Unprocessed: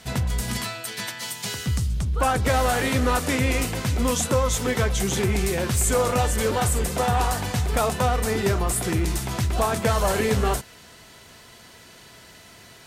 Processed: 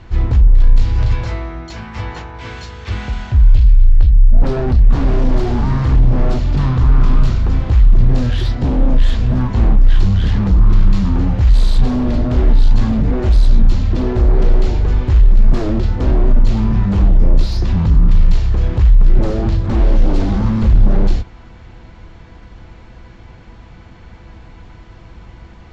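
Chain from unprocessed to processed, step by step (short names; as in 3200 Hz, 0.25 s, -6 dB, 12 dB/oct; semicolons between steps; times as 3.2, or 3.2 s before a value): speed mistake 15 ips tape played at 7.5 ips; sine folder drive 7 dB, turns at -11.5 dBFS; RIAA curve playback; gain -9 dB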